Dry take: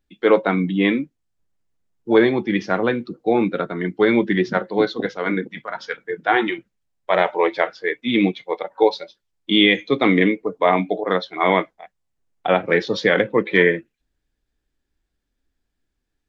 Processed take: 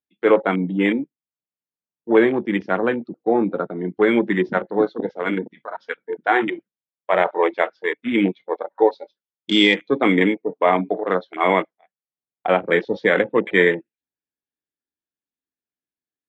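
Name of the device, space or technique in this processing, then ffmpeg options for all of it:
over-cleaned archive recording: -af "highpass=170,lowpass=5.1k,afwtdn=0.0447"

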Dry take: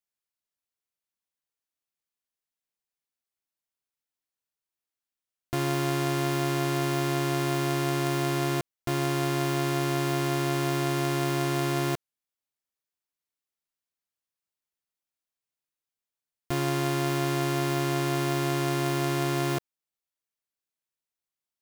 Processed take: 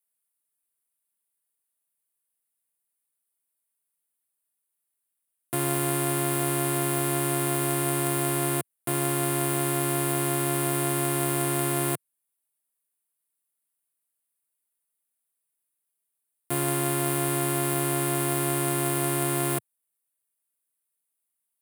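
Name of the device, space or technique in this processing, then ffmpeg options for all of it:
budget condenser microphone: -af "highpass=f=120:w=0.5412,highpass=f=120:w=1.3066,highshelf=f=7.6k:t=q:w=3:g=9.5"

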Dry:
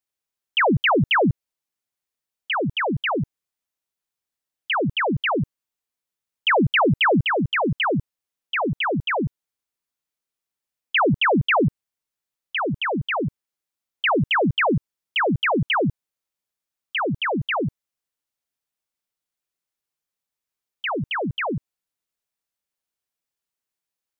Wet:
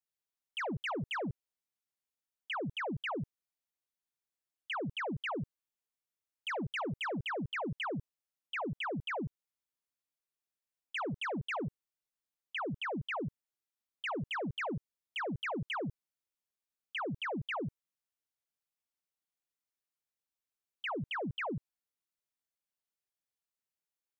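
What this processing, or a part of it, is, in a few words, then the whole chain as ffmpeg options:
soft clipper into limiter: -af "asoftclip=type=tanh:threshold=-15.5dB,alimiter=level_in=1dB:limit=-24dB:level=0:latency=1:release=18,volume=-1dB,volume=-8.5dB"

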